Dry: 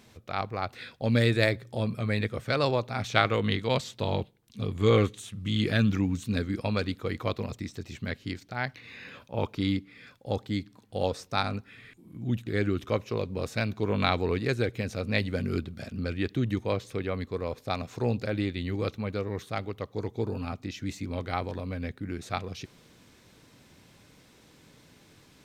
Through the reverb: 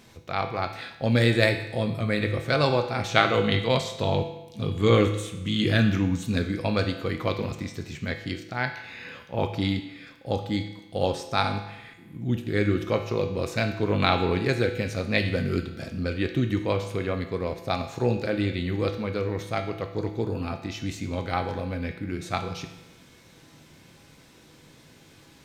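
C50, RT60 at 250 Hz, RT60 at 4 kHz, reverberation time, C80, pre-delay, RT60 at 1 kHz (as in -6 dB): 8.5 dB, 1.0 s, 0.90 s, 0.95 s, 11.0 dB, 6 ms, 0.95 s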